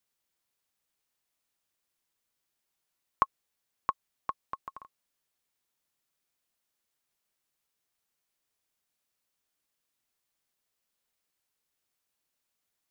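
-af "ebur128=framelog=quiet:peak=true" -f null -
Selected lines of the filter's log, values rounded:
Integrated loudness:
  I:         -36.7 LUFS
  Threshold: -47.5 LUFS
Loudness range:
  LRA:        12.8 LU
  Threshold: -61.5 LUFS
  LRA low:   -52.5 LUFS
  LRA high:  -39.7 LUFS
True peak:
  Peak:       -9.2 dBFS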